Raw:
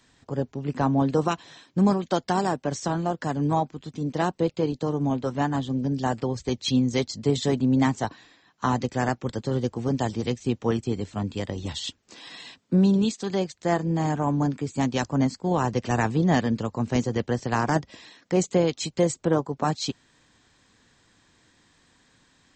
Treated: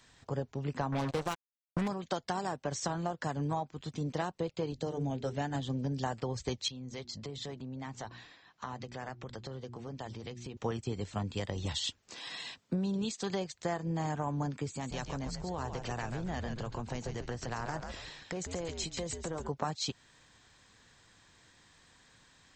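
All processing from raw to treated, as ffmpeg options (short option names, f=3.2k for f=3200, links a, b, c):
-filter_complex "[0:a]asettb=1/sr,asplit=3[a][b][c];[a]atrim=end=0.924[d];[b]atrim=start=0.92:end=1.88,asetpts=PTS-STARTPTS,afade=t=in:d=0.004:c=qsin,afade=t=out:st=0.956:d=0.004:c=qsin,aeval=exprs='val(0)+0.5*0.0376*sgn(val(0))':c=same,acrusher=bits=3:mix=0:aa=0.5[e];[c]atrim=start=1.876[f];[d][e]acrossfade=d=0.004:c1=hsin:c2=qsin[g];[g][f]acrossfade=d=0.004:c1=qsin:c2=hsin,asettb=1/sr,asplit=3[h][i][j];[h]atrim=end=4.744[k];[i]atrim=start=4.74:end=5.62,asetpts=PTS-STARTPTS,afade=t=in:d=0.004:c=qsin,afade=t=out:st=0.876:d=0.004:c=qsin,equalizer=f=1.1k:t=o:w=0.58:g=-12,bandreject=f=50:t=h:w=6,bandreject=f=100:t=h:w=6,bandreject=f=150:t=h:w=6,bandreject=f=200:t=h:w=6,bandreject=f=250:t=h:w=6,bandreject=f=300:t=h:w=6,bandreject=f=350:t=h:w=6,bandreject=f=400:t=h:w=6,bandreject=f=450:t=h:w=6[l];[j]atrim=start=5.616[m];[k][l]acrossfade=d=0.004:c1=hsin:c2=qsin[n];[n][m]acrossfade=d=0.004:c1=qsin:c2=hsin,asettb=1/sr,asplit=3[o][p][q];[o]atrim=end=6.684[r];[p]atrim=start=6.68:end=10.57,asetpts=PTS-STARTPTS,afade=t=in:d=0.004:c=qsin,afade=t=out:st=3.886:d=0.004:c=qsin,lowpass=5.7k,bandreject=f=60:t=h:w=6,bandreject=f=120:t=h:w=6,bandreject=f=180:t=h:w=6,bandreject=f=240:t=h:w=6,bandreject=f=300:t=h:w=6,bandreject=f=360:t=h:w=6,acompressor=threshold=-38dB:ratio=4:attack=3.2:release=140:knee=1:detection=peak[s];[q]atrim=start=10.566[t];[r][s]acrossfade=d=0.004:c1=hsin:c2=qsin[u];[u][t]acrossfade=d=0.004:c1=qsin:c2=hsin,asettb=1/sr,asplit=3[v][w][x];[v]atrim=end=14.704[y];[w]atrim=start=14.7:end=19.49,asetpts=PTS-STARTPTS,afade=t=in:d=0.004:c=qsin,afade=t=out:st=4.786:d=0.004:c=qsin,acompressor=threshold=-33dB:ratio=4:attack=3.2:release=140:knee=1:detection=peak,asplit=5[z][aa][ab][ac][ad];[aa]adelay=139,afreqshift=-100,volume=-6.5dB[ae];[ab]adelay=278,afreqshift=-200,volume=-15.4dB[af];[ac]adelay=417,afreqshift=-300,volume=-24.2dB[ag];[ad]adelay=556,afreqshift=-400,volume=-33.1dB[ah];[z][ae][af][ag][ah]amix=inputs=5:normalize=0,atrim=end_sample=211239[ai];[x]atrim=start=19.486[aj];[y][ai]acrossfade=d=0.004:c1=hsin:c2=qsin[ak];[ak][aj]acrossfade=d=0.004:c1=qsin:c2=hsin,equalizer=f=270:t=o:w=1.2:g=-6.5,acompressor=threshold=-31dB:ratio=5"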